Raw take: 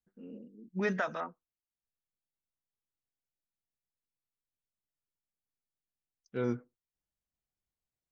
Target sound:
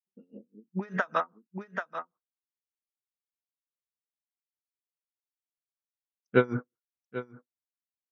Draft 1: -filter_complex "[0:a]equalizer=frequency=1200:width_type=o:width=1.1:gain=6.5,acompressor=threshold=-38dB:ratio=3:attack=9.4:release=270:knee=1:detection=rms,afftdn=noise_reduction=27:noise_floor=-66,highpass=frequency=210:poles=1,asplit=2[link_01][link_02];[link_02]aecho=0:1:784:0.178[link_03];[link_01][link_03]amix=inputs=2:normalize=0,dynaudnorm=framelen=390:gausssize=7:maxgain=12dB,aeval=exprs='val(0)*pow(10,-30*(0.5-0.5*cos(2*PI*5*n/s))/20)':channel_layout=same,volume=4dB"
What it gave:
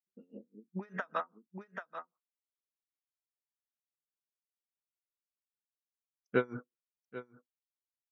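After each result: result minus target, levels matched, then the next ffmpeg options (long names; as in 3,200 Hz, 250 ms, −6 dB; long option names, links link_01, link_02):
downward compressor: peak gain reduction +12 dB; 125 Hz band −2.5 dB
-filter_complex "[0:a]equalizer=frequency=1200:width_type=o:width=1.1:gain=6.5,afftdn=noise_reduction=27:noise_floor=-66,highpass=frequency=210:poles=1,asplit=2[link_01][link_02];[link_02]aecho=0:1:784:0.178[link_03];[link_01][link_03]amix=inputs=2:normalize=0,dynaudnorm=framelen=390:gausssize=7:maxgain=12dB,aeval=exprs='val(0)*pow(10,-30*(0.5-0.5*cos(2*PI*5*n/s))/20)':channel_layout=same,volume=4dB"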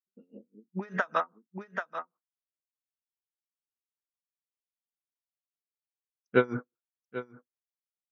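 125 Hz band −3.0 dB
-filter_complex "[0:a]equalizer=frequency=1200:width_type=o:width=1.1:gain=6.5,afftdn=noise_reduction=27:noise_floor=-66,highpass=frequency=79:poles=1,asplit=2[link_01][link_02];[link_02]aecho=0:1:784:0.178[link_03];[link_01][link_03]amix=inputs=2:normalize=0,dynaudnorm=framelen=390:gausssize=7:maxgain=12dB,aeval=exprs='val(0)*pow(10,-30*(0.5-0.5*cos(2*PI*5*n/s))/20)':channel_layout=same,volume=4dB"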